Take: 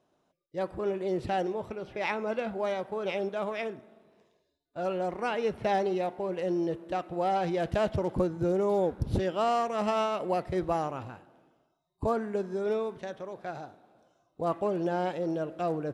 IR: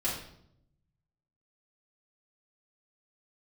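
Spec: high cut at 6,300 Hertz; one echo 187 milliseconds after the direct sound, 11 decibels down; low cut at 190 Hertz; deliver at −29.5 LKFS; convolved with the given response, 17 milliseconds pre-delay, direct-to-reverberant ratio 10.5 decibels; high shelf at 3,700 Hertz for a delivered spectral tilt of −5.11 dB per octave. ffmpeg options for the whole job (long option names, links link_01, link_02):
-filter_complex "[0:a]highpass=190,lowpass=6300,highshelf=frequency=3700:gain=-6,aecho=1:1:187:0.282,asplit=2[link_01][link_02];[1:a]atrim=start_sample=2205,adelay=17[link_03];[link_02][link_03]afir=irnorm=-1:irlink=0,volume=-17dB[link_04];[link_01][link_04]amix=inputs=2:normalize=0,volume=1.5dB"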